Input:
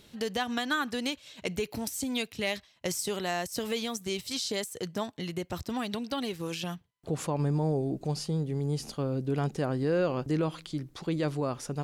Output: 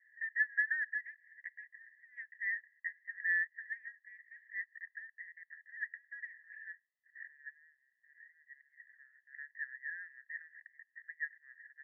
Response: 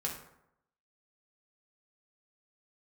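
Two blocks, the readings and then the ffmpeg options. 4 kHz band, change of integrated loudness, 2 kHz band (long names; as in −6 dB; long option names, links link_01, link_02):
below −40 dB, −7.5 dB, +2.5 dB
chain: -af "asuperpass=centerf=1800:order=8:qfactor=6.6,volume=9.5dB"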